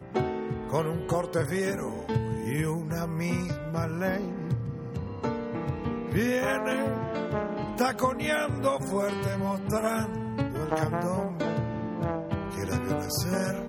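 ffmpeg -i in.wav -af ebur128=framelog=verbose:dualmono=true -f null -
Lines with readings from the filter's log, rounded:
Integrated loudness:
  I:         -26.7 LUFS
  Threshold: -36.7 LUFS
Loudness range:
  LRA:         2.7 LU
  Threshold: -46.7 LUFS
  LRA low:   -28.1 LUFS
  LRA high:  -25.4 LUFS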